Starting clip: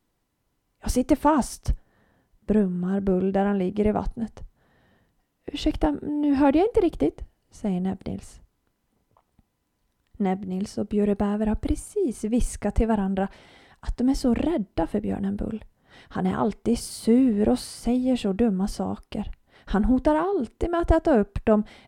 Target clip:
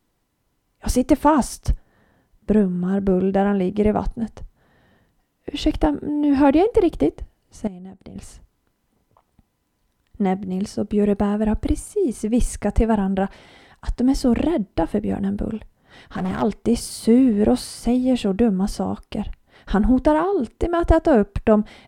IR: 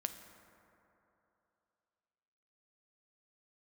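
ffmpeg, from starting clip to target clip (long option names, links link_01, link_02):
-filter_complex "[0:a]asettb=1/sr,asplit=3[link_01][link_02][link_03];[link_01]atrim=end=7.674[link_04];[link_02]atrim=start=7.67:end=8.16,asetpts=PTS-STARTPTS,afade=type=in:duration=0.004:curve=qsin,afade=type=out:start_time=0.486:duration=0.004:curve=qsin,acompressor=threshold=-39dB:ratio=10[link_05];[link_03]atrim=start=8.156[link_06];[link_04][link_05]acrossfade=duration=0.004:curve1=hsin:curve2=qsin[link_07];[link_07][link_06]acrossfade=duration=0.004:curve1=qsin:curve2=hsin,asplit=3[link_08][link_09][link_10];[link_08]afade=type=out:start_time=15.53:duration=0.02[link_11];[link_09]asoftclip=type=hard:threshold=-25dB,afade=type=in:start_time=15.53:duration=0.02,afade=type=out:start_time=16.41:duration=0.02[link_12];[link_10]afade=type=in:start_time=16.41:duration=0.02[link_13];[link_11][link_12][link_13]amix=inputs=3:normalize=0,volume=4dB"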